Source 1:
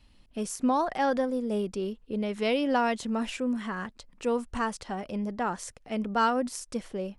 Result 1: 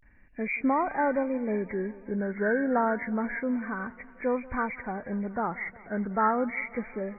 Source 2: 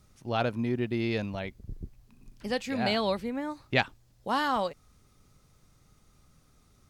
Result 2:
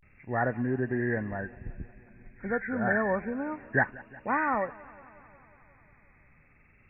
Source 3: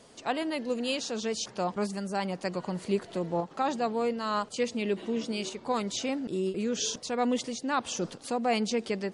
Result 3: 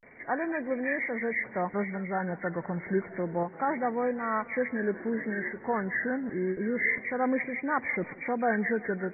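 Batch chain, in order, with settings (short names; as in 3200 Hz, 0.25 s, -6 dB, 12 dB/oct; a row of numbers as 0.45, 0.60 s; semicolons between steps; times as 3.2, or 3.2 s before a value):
nonlinear frequency compression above 1400 Hz 4:1; vibrato 0.3 Hz 86 cents; warbling echo 0.18 s, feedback 71%, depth 84 cents, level -21.5 dB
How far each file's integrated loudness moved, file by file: +0.5, +0.5, +0.5 LU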